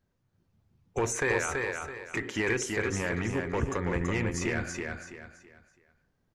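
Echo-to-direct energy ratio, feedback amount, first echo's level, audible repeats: −3.5 dB, 32%, −4.0 dB, 4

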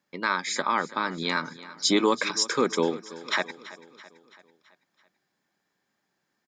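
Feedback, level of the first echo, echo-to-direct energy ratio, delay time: 53%, −17.5 dB, −16.0 dB, 332 ms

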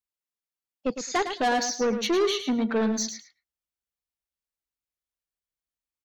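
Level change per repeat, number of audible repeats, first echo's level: −16.0 dB, 2, −9.0 dB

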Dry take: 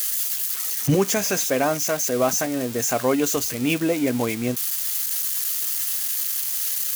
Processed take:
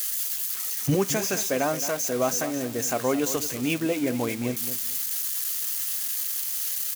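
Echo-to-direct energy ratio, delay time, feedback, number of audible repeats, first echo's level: −12.0 dB, 219 ms, 22%, 2, −12.0 dB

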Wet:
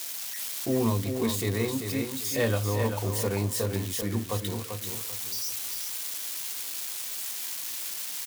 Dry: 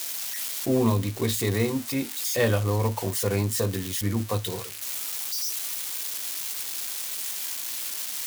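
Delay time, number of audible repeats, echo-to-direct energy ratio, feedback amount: 391 ms, 3, −6.0 dB, 29%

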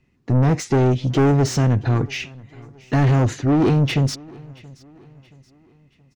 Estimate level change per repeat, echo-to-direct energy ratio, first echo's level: −7.5 dB, −22.5 dB, −23.5 dB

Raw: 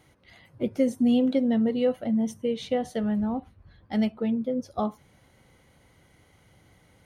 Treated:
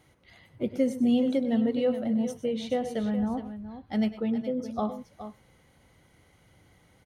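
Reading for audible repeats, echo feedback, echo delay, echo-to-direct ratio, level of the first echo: 2, repeats not evenly spaced, 101 ms, −9.5 dB, −15.0 dB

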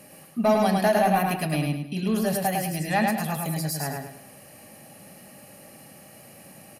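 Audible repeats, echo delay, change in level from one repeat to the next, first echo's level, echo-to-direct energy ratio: 4, 105 ms, −9.0 dB, −3.0 dB, −2.5 dB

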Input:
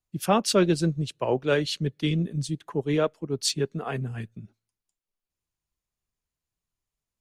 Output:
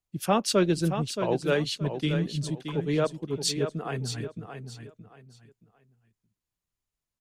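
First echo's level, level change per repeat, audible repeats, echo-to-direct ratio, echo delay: −8.5 dB, −11.5 dB, 3, −8.0 dB, 624 ms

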